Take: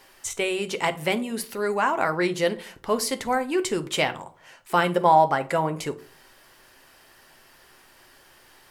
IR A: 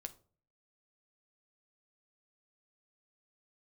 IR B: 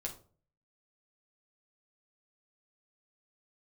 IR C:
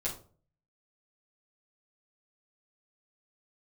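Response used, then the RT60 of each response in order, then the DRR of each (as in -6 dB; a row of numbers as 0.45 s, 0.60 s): A; 0.45 s, 0.45 s, 0.45 s; 7.5 dB, -1.0 dB, -8.5 dB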